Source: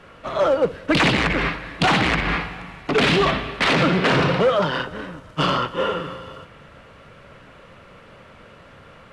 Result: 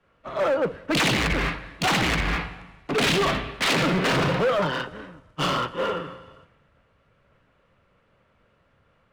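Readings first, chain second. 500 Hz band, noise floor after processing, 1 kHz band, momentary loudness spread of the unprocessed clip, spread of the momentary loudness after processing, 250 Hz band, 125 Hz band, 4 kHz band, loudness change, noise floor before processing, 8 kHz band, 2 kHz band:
-4.5 dB, -65 dBFS, -4.5 dB, 14 LU, 14 LU, -4.5 dB, -4.0 dB, -2.5 dB, -4.0 dB, -47 dBFS, +4.0 dB, -4.0 dB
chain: overload inside the chain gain 18.5 dB; three bands expanded up and down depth 70%; trim -1.5 dB

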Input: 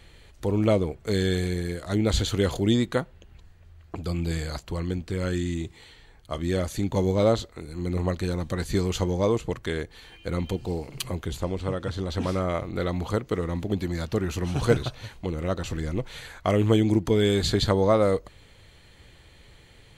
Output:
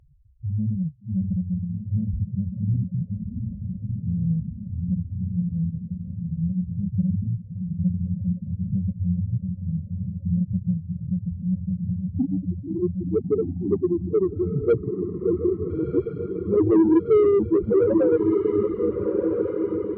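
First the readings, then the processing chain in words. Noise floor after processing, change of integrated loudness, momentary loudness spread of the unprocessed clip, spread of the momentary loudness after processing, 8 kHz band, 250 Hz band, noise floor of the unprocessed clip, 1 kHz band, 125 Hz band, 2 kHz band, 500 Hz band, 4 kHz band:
-40 dBFS, +2.0 dB, 11 LU, 11 LU, under -40 dB, +4.0 dB, -53 dBFS, -8.5 dB, +2.5 dB, under -10 dB, +3.0 dB, under -30 dB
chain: bit-reversed sample order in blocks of 16 samples; low-pass sweep 160 Hz -> 380 Hz, 10.37–13.27 s; echo that smears into a reverb 675 ms, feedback 52%, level -9 dB; loudest bins only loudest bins 2; overdrive pedal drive 21 dB, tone 5.4 kHz, clips at -8.5 dBFS; tilt shelf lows +8 dB, about 1.1 kHz; on a send: echo that smears into a reverb 1357 ms, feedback 63%, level -5 dB; on the sum: reverb removal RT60 0.54 s; treble shelf 2.9 kHz +7 dB; trim -6.5 dB

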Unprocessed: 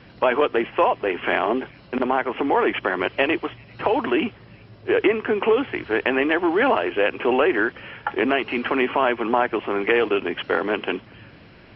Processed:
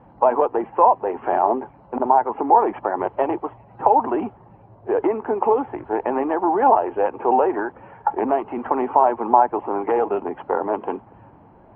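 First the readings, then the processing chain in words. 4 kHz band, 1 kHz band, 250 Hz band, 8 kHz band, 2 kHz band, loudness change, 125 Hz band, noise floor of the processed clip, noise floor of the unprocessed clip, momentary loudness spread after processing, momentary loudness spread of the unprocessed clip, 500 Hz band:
under -20 dB, +7.0 dB, -2.0 dB, no reading, -13.0 dB, +1.5 dB, -3.5 dB, -49 dBFS, -47 dBFS, 10 LU, 7 LU, 0.0 dB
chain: coarse spectral quantiser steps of 15 dB; resonant low-pass 870 Hz, resonance Q 5; trim -3 dB

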